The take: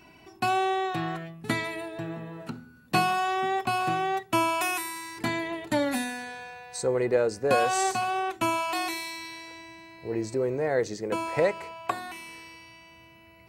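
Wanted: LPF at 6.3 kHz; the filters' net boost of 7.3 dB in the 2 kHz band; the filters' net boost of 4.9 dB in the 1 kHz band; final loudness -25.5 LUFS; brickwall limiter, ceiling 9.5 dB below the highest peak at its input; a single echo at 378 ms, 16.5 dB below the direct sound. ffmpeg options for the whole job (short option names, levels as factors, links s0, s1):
-af "lowpass=6300,equalizer=f=1000:t=o:g=5,equalizer=f=2000:t=o:g=8,alimiter=limit=0.158:level=0:latency=1,aecho=1:1:378:0.15,volume=1.12"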